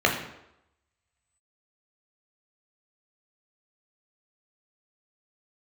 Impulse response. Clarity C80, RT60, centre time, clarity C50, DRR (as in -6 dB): 9.5 dB, 0.85 s, 27 ms, 6.5 dB, 0.0 dB